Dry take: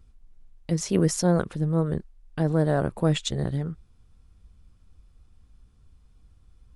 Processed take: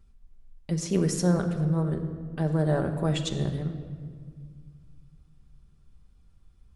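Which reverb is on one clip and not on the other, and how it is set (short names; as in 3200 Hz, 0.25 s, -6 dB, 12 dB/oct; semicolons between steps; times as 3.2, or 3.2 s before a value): shoebox room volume 3000 m³, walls mixed, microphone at 1.2 m; gain -4 dB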